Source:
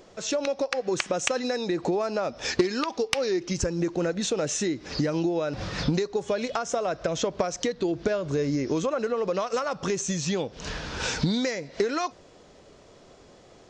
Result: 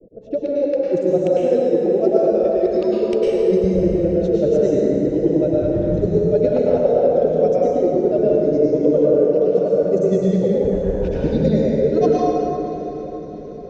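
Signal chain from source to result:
reverb reduction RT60 1.9 s
low-pass that shuts in the quiet parts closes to 330 Hz, open at −22 dBFS
in parallel at +2.5 dB: output level in coarse steps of 14 dB
on the sum: low shelf with overshoot 760 Hz +13.5 dB, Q 3
reversed playback
downward compressor, threshold −11 dBFS, peak gain reduction 15 dB
reversed playback
granular cloud 98 ms, grains 10 per second, spray 12 ms, pitch spread up and down by 0 semitones
feedback delay with all-pass diffusion 689 ms, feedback 61%, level −15.5 dB
dense smooth reverb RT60 3.3 s, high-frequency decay 0.55×, pre-delay 90 ms, DRR −7 dB
level −5.5 dB

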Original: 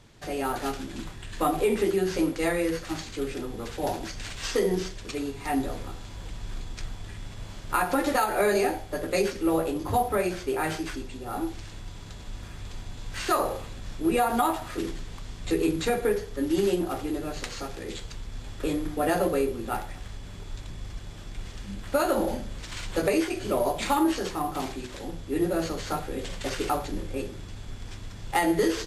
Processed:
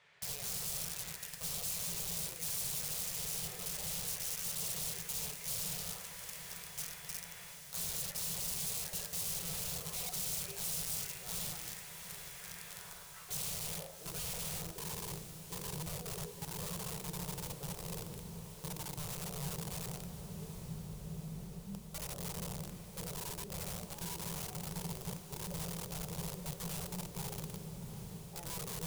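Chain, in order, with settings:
on a send at −2 dB: convolution reverb RT60 0.90 s, pre-delay 6 ms
on the sum: band-pass filter sweep 1,900 Hz → 240 Hz, 0:12.62–0:15.33
reversed playback
downward compressor 12 to 1, threshold −43 dBFS, peak gain reduction 21.5 dB
reversed playback
bass and treble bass −11 dB, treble −11 dB
wrap-around overflow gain 46 dB
drawn EQ curve 110 Hz 0 dB, 170 Hz +7 dB, 270 Hz −26 dB, 430 Hz −6 dB, 1,700 Hz −16 dB, 2,600 Hz −10 dB, 9,600 Hz +3 dB
feedback delay with all-pass diffusion 744 ms, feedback 72%, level −11.5 dB
level +13.5 dB

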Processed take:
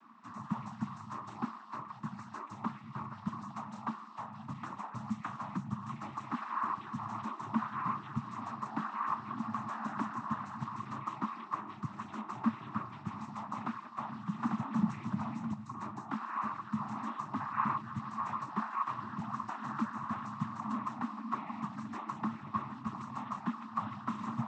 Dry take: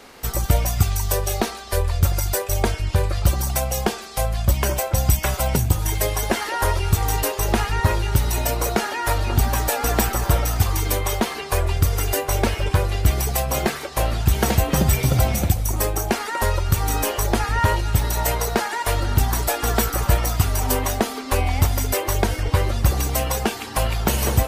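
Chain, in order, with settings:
cochlear-implant simulation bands 12
pair of resonant band-passes 490 Hz, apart 2.3 octaves
level −2 dB

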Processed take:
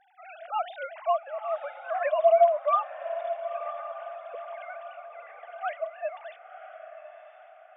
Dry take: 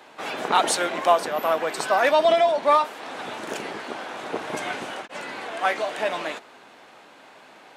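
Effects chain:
three sine waves on the formant tracks
on a send: feedback delay with all-pass diffusion 1,001 ms, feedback 44%, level −11 dB
on the sum: level −5.5 dB

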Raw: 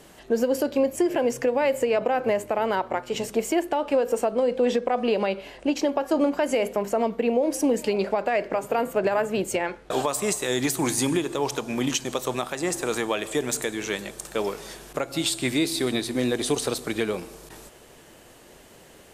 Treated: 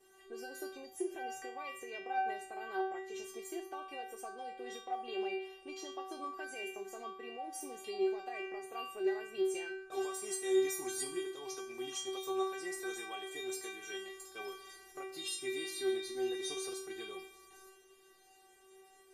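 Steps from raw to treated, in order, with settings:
low-shelf EQ 82 Hz −7.5 dB
stiff-string resonator 380 Hz, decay 0.61 s, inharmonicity 0.002
level +5.5 dB

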